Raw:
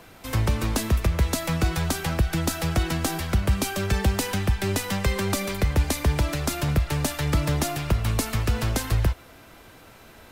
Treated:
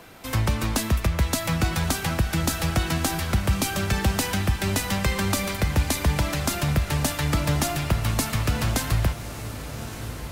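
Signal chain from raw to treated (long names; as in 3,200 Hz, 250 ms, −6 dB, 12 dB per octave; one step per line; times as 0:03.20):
low-shelf EQ 81 Hz −5 dB
on a send: feedback delay with all-pass diffusion 1,264 ms, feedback 42%, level −11 dB
on the sum: dynamic equaliser 420 Hz, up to −5 dB, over −41 dBFS, Q 1.9
level +2 dB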